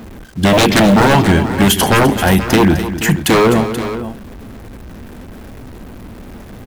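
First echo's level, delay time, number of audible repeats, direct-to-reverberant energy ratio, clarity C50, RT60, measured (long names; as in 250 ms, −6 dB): −12.0 dB, 254 ms, 2, no reverb audible, no reverb audible, no reverb audible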